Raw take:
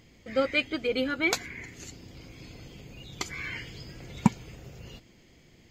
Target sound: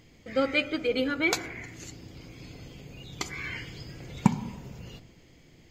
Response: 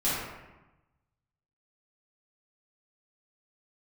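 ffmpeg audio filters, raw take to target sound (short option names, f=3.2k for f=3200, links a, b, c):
-filter_complex "[0:a]asplit=2[a][b];[1:a]atrim=start_sample=2205,lowpass=1.7k[c];[b][c]afir=irnorm=-1:irlink=0,volume=-20.5dB[d];[a][d]amix=inputs=2:normalize=0"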